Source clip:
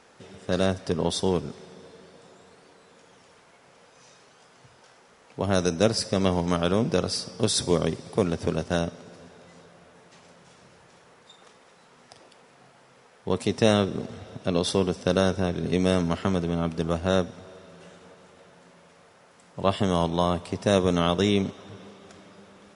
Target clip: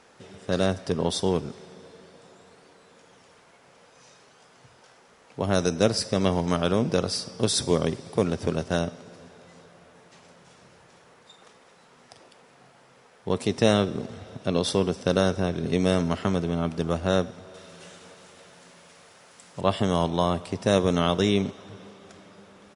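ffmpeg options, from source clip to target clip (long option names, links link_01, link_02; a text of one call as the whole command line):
ffmpeg -i in.wav -filter_complex "[0:a]asettb=1/sr,asplit=3[link_01][link_02][link_03];[link_01]atrim=end=17.544[link_04];[link_02]atrim=start=17.54:end=19.61,asetpts=PTS-STARTPTS,afade=type=in:duration=0.004:curve=qsin,afade=type=out:start_time=2.066:duration=0.004:curve=qsin,highshelf=frequency=2300:gain=10[link_05];[link_03]atrim=start=19.606[link_06];[link_04][link_05]acrossfade=duration=0.004:curve1=hsin:curve2=qsin[link_07];[link_07][link_06]acrossfade=duration=0.004:curve1=qsin:curve2=hsin,asplit=2[link_08][link_09];[link_09]adelay=100,highpass=300,lowpass=3400,asoftclip=type=hard:threshold=-14.5dB,volume=-23dB[link_10];[link_08][link_10]amix=inputs=2:normalize=0" out.wav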